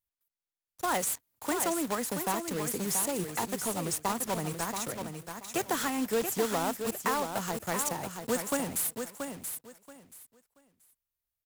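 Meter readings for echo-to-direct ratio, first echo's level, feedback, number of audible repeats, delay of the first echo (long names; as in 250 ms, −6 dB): −7.0 dB, −7.0 dB, 21%, 3, 680 ms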